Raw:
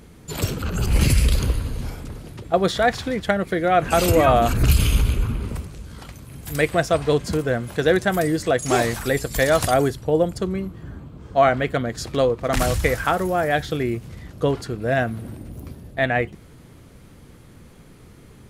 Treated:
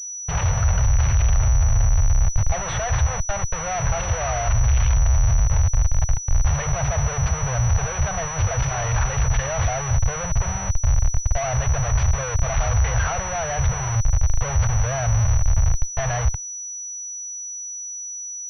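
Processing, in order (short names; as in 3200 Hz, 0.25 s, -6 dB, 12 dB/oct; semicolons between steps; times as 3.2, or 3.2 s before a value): 3.21–5.5 gate -24 dBFS, range -14 dB; soft clip -12.5 dBFS, distortion -16 dB; notches 50/100/150 Hz; Schmitt trigger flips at -32.5 dBFS; Chebyshev band-stop 110–700 Hz, order 2; low shelf 220 Hz +10.5 dB; pulse-width modulation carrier 5900 Hz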